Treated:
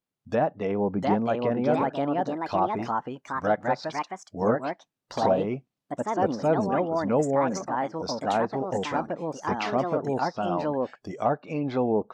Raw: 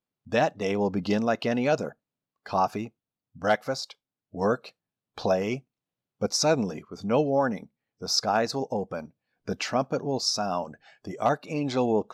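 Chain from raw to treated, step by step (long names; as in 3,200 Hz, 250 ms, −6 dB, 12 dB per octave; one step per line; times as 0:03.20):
treble cut that deepens with the level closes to 1,200 Hz, closed at −22.5 dBFS
delay with pitch and tempo change per echo 756 ms, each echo +3 semitones, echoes 2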